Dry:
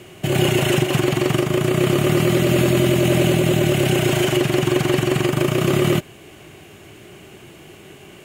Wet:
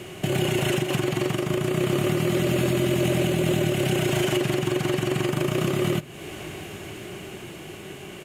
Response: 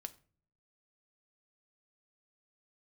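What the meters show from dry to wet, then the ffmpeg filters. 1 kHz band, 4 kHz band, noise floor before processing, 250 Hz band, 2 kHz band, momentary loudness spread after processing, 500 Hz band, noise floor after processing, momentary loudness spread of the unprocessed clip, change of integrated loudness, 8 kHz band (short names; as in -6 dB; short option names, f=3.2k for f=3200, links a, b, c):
-6.0 dB, -5.5 dB, -44 dBFS, -6.0 dB, -5.5 dB, 15 LU, -5.5 dB, -40 dBFS, 3 LU, -6.0 dB, -5.5 dB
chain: -filter_complex "[0:a]dynaudnorm=f=280:g=13:m=11.5dB,aresample=32000,aresample=44100,acompressor=threshold=-22dB:ratio=4,asplit=2[a][b];[1:a]atrim=start_sample=2205[c];[b][c]afir=irnorm=-1:irlink=0,volume=3dB[d];[a][d]amix=inputs=2:normalize=0,alimiter=limit=-10dB:level=0:latency=1:release=493,volume=-2.5dB"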